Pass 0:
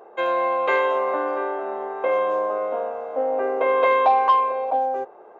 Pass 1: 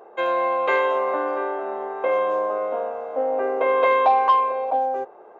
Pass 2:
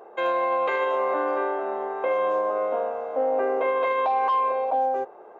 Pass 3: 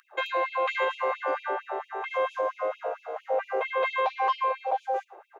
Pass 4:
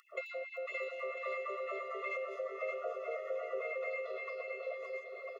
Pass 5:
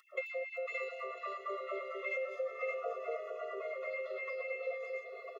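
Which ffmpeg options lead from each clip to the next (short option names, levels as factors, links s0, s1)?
-af anull
-af "alimiter=limit=0.15:level=0:latency=1:release=27"
-filter_complex "[0:a]acrossover=split=170|1800[s0][s1][s2];[s2]acontrast=53[s3];[s0][s1][s3]amix=inputs=3:normalize=0,asplit=2[s4][s5];[s5]adelay=110.8,volume=0.1,highshelf=f=4000:g=-2.49[s6];[s4][s6]amix=inputs=2:normalize=0,afftfilt=real='re*gte(b*sr/1024,280*pow(2400/280,0.5+0.5*sin(2*PI*4.4*pts/sr)))':imag='im*gte(b*sr/1024,280*pow(2400/280,0.5+0.5*sin(2*PI*4.4*pts/sr)))':win_size=1024:overlap=0.75,volume=0.841"
-filter_complex "[0:a]acompressor=threshold=0.0158:ratio=10,asplit=2[s0][s1];[s1]aecho=0:1:570|997.5|1318|1559|1739:0.631|0.398|0.251|0.158|0.1[s2];[s0][s2]amix=inputs=2:normalize=0,afftfilt=real='re*eq(mod(floor(b*sr/1024/360),2),1)':imag='im*eq(mod(floor(b*sr/1024/360),2),1)':win_size=1024:overlap=0.75,volume=1.19"
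-filter_complex "[0:a]asplit=2[s0][s1];[s1]adelay=3.3,afreqshift=-0.47[s2];[s0][s2]amix=inputs=2:normalize=1,volume=1.41"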